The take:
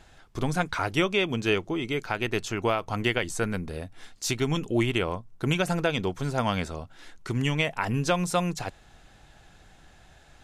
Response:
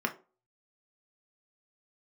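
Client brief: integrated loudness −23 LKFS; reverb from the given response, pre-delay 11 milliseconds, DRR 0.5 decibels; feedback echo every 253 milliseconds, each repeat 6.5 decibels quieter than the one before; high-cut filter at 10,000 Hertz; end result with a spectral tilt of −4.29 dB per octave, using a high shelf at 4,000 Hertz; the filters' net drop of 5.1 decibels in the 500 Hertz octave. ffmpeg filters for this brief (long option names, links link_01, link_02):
-filter_complex "[0:a]lowpass=10000,equalizer=frequency=500:width_type=o:gain=-7,highshelf=frequency=4000:gain=7.5,aecho=1:1:253|506|759|1012|1265|1518:0.473|0.222|0.105|0.0491|0.0231|0.0109,asplit=2[link_01][link_02];[1:a]atrim=start_sample=2205,adelay=11[link_03];[link_02][link_03]afir=irnorm=-1:irlink=0,volume=-8dB[link_04];[link_01][link_04]amix=inputs=2:normalize=0,volume=1.5dB"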